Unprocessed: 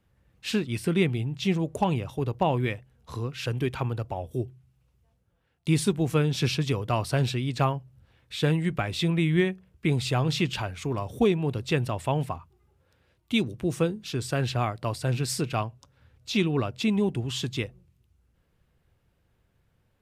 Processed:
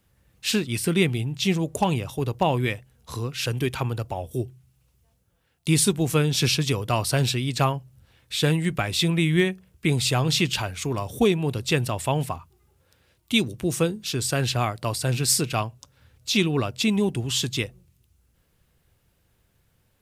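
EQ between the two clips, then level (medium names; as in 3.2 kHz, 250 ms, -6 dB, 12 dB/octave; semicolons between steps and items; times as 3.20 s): treble shelf 4.1 kHz +12 dB; +2.0 dB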